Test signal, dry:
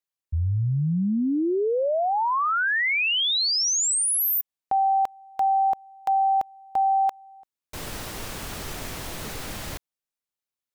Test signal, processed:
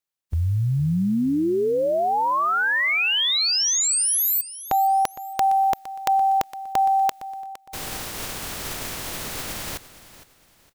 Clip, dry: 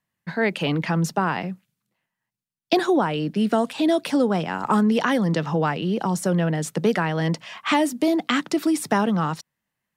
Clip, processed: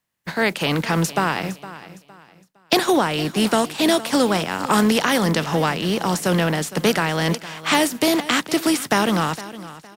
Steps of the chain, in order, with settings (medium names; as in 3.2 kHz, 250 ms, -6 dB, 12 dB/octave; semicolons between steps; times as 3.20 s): spectral contrast reduction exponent 0.63; feedback delay 461 ms, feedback 31%, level -16 dB; trim +2 dB